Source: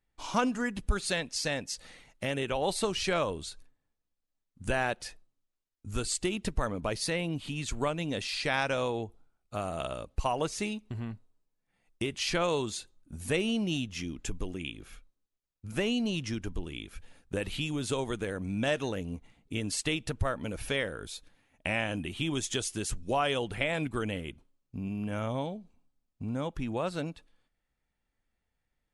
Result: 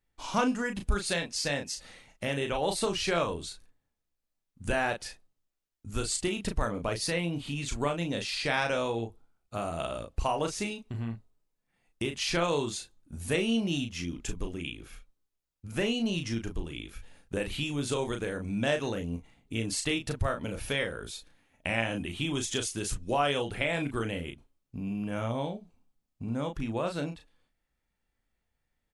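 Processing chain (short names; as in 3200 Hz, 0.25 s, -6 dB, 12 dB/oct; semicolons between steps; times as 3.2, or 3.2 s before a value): doubler 35 ms -6 dB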